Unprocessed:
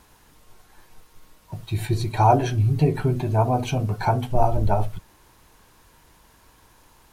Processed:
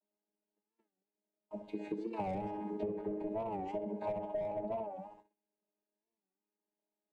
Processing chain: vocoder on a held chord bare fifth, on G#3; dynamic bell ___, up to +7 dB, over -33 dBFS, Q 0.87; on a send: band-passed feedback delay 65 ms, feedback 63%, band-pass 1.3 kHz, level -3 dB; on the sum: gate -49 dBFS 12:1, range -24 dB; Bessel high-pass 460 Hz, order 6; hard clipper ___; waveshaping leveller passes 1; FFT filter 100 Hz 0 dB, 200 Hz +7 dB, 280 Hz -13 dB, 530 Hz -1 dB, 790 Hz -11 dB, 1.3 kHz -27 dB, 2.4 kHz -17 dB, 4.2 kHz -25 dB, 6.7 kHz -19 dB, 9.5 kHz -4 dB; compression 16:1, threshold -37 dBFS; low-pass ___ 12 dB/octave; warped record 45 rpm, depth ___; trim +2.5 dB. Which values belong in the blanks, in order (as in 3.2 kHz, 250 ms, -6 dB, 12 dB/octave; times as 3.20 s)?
650 Hz, -15 dBFS, 5.4 kHz, 160 cents